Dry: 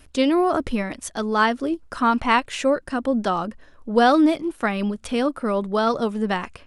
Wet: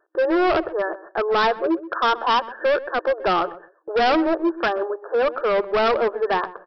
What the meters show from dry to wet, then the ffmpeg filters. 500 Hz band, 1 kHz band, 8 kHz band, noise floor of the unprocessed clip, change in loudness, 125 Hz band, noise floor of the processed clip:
+3.0 dB, +1.0 dB, below −15 dB, −51 dBFS, +0.5 dB, −10.0 dB, −55 dBFS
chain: -filter_complex "[0:a]afftfilt=real='re*between(b*sr/4096,320,1800)':imag='im*between(b*sr/4096,320,1800)':win_size=4096:overlap=0.75,agate=range=-13dB:threshold=-51dB:ratio=16:detection=peak,aresample=11025,volume=23.5dB,asoftclip=hard,volume=-23.5dB,aresample=44100,asplit=2[link_01][link_02];[link_02]adelay=127,lowpass=frequency=870:poles=1,volume=-14dB,asplit=2[link_03][link_04];[link_04]adelay=127,lowpass=frequency=870:poles=1,volume=0.21[link_05];[link_01][link_03][link_05]amix=inputs=3:normalize=0,volume=7.5dB"

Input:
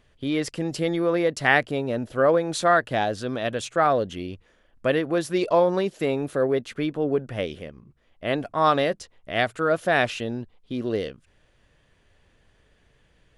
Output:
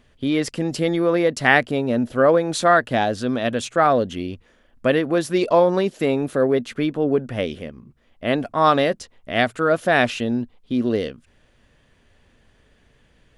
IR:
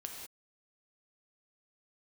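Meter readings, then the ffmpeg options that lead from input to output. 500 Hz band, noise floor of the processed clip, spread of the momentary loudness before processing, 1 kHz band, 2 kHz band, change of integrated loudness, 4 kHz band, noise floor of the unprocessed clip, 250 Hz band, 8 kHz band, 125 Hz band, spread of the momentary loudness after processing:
+3.5 dB, −59 dBFS, 11 LU, +3.5 dB, +3.5 dB, +4.0 dB, +3.5 dB, −63 dBFS, +5.5 dB, +3.5 dB, +4.0 dB, 10 LU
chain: -af "equalizer=frequency=240:width=5.2:gain=7,volume=3.5dB"

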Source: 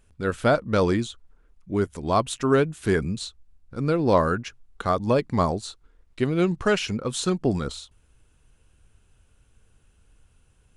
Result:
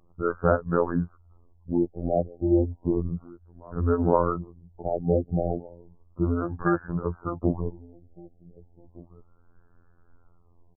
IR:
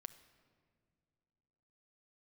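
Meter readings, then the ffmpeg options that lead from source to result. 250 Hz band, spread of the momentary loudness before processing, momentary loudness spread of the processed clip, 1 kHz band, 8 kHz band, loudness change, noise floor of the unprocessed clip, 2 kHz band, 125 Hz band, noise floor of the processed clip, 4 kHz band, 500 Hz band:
−1.5 dB, 12 LU, 12 LU, −4.0 dB, below −40 dB, −2.5 dB, −61 dBFS, −8.5 dB, −1.0 dB, −59 dBFS, below −40 dB, −3.0 dB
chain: -filter_complex "[0:a]asplit=2[link_01][link_02];[link_02]acompressor=threshold=-34dB:ratio=6,volume=3dB[link_03];[link_01][link_03]amix=inputs=2:normalize=0,asplit=2[link_04][link_05];[link_05]adelay=1516,volume=-22dB,highshelf=frequency=4000:gain=-34.1[link_06];[link_04][link_06]amix=inputs=2:normalize=0,afreqshift=-56,afftfilt=real='hypot(re,im)*cos(PI*b)':imag='0':win_size=2048:overlap=0.75,afftfilt=real='re*lt(b*sr/1024,780*pow(1800/780,0.5+0.5*sin(2*PI*0.33*pts/sr)))':imag='im*lt(b*sr/1024,780*pow(1800/780,0.5+0.5*sin(2*PI*0.33*pts/sr)))':win_size=1024:overlap=0.75"

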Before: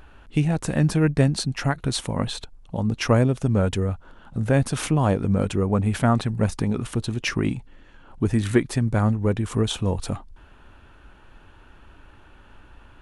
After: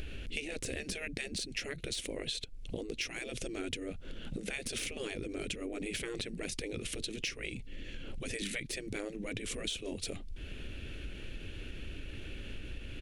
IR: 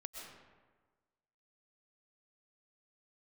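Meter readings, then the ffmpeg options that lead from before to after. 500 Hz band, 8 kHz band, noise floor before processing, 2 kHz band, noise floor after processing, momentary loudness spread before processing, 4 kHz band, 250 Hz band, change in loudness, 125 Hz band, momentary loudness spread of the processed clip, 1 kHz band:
−15.0 dB, −6.0 dB, −50 dBFS, −7.5 dB, −46 dBFS, 9 LU, −5.5 dB, −19.0 dB, −16.5 dB, −24.5 dB, 9 LU, −23.0 dB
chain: -af "afftfilt=real='re*lt(hypot(re,im),0.224)':imag='im*lt(hypot(re,im),0.224)':win_size=1024:overlap=0.75,deesser=0.6,firequalizer=gain_entry='entry(490,0);entry(910,-23);entry(2200,4);entry(8600,1)':delay=0.05:min_phase=1,acompressor=threshold=-46dB:ratio=5,volume=9dB"

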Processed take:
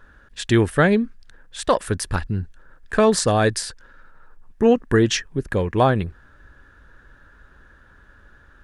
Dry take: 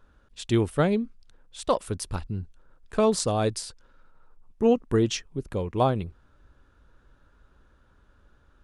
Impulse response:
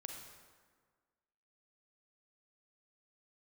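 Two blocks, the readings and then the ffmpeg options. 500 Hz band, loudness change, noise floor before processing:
+5.5 dB, +6.0 dB, −61 dBFS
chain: -filter_complex "[0:a]equalizer=frequency=1700:width_type=o:width=0.4:gain=13.5,asplit=2[link_01][link_02];[link_02]alimiter=limit=-17dB:level=0:latency=1:release=86,volume=-0.5dB[link_03];[link_01][link_03]amix=inputs=2:normalize=0,volume=1.5dB"

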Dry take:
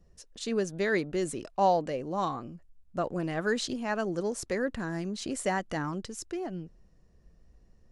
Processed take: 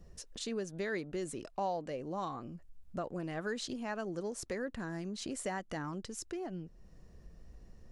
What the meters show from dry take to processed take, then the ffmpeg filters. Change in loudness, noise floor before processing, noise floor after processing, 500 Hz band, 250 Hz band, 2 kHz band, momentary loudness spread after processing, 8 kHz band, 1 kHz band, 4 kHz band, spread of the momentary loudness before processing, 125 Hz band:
−8.0 dB, −61 dBFS, −59 dBFS, −8.5 dB, −7.0 dB, −8.5 dB, 16 LU, −5.0 dB, −9.5 dB, −6.0 dB, 11 LU, −6.5 dB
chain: -af "acompressor=threshold=-53dB:ratio=2,volume=6dB"

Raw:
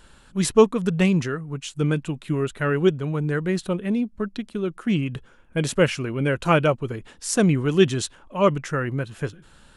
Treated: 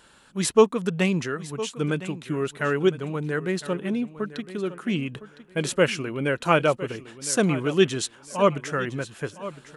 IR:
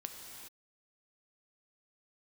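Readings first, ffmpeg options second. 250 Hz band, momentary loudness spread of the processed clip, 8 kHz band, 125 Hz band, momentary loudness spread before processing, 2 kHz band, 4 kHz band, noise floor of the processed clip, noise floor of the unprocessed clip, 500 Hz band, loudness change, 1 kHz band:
−3.5 dB, 12 LU, 0.0 dB, −5.5 dB, 11 LU, 0.0 dB, 0.0 dB, −55 dBFS, −53 dBFS, −1.0 dB, −2.0 dB, 0.0 dB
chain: -filter_complex "[0:a]highpass=frequency=260:poles=1,asplit=2[link_01][link_02];[link_02]aecho=0:1:1010|2020|3030:0.178|0.0427|0.0102[link_03];[link_01][link_03]amix=inputs=2:normalize=0"

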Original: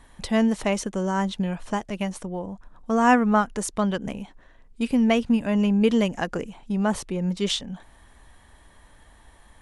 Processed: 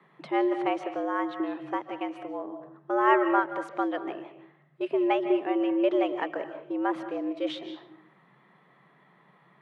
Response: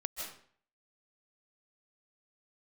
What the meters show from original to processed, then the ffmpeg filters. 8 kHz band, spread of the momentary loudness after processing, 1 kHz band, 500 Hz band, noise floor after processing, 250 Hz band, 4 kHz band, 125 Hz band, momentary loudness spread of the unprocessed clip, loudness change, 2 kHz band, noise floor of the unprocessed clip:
below −25 dB, 14 LU, −1.5 dB, −1.0 dB, −62 dBFS, −7.0 dB, −10.5 dB, below −25 dB, 14 LU, −4.5 dB, −4.0 dB, −54 dBFS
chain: -filter_complex "[0:a]afreqshift=130,acrossover=split=260 3100:gain=0.158 1 0.0631[link_01][link_02][link_03];[link_01][link_02][link_03]amix=inputs=3:normalize=0,asplit=2[link_04][link_05];[1:a]atrim=start_sample=2205,lowpass=5000[link_06];[link_05][link_06]afir=irnorm=-1:irlink=0,volume=-4dB[link_07];[link_04][link_07]amix=inputs=2:normalize=0,volume=-7dB"

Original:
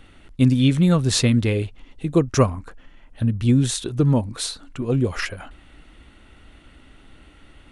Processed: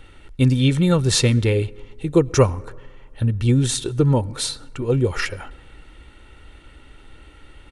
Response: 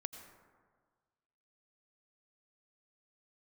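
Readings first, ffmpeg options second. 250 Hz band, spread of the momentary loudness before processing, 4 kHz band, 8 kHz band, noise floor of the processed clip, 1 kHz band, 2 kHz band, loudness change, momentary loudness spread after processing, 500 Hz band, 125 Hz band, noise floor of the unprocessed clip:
−1.5 dB, 13 LU, +2.0 dB, +2.5 dB, −47 dBFS, +1.0 dB, +2.0 dB, +1.0 dB, 12 LU, +3.5 dB, +1.5 dB, −51 dBFS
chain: -filter_complex "[0:a]aecho=1:1:2.2:0.43,asplit=2[link_01][link_02];[1:a]atrim=start_sample=2205[link_03];[link_02][link_03]afir=irnorm=-1:irlink=0,volume=-12dB[link_04];[link_01][link_04]amix=inputs=2:normalize=0"

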